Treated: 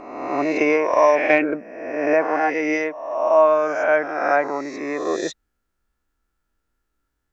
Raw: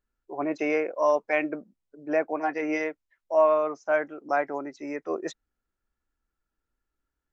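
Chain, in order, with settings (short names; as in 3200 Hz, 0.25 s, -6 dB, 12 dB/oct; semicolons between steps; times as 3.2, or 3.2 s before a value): spectral swells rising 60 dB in 1.18 s; 0.56–1.57 transient shaper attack +8 dB, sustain +2 dB; gain +5 dB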